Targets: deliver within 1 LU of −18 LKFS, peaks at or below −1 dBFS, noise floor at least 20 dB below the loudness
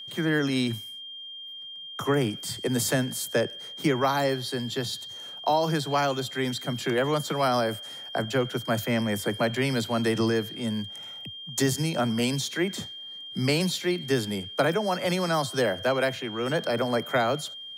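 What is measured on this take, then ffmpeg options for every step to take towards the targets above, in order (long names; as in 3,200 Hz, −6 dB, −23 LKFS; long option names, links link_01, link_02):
interfering tone 3,200 Hz; level of the tone −38 dBFS; integrated loudness −27.0 LKFS; sample peak −10.5 dBFS; target loudness −18.0 LKFS
→ -af "bandreject=frequency=3200:width=30"
-af "volume=9dB"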